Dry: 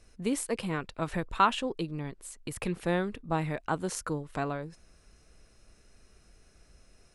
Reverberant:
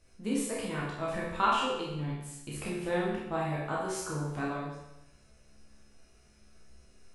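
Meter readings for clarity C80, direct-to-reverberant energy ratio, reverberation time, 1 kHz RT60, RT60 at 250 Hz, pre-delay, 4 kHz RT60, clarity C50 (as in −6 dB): 4.0 dB, −6.0 dB, 0.90 s, 0.90 s, 0.90 s, 14 ms, 0.85 s, 0.5 dB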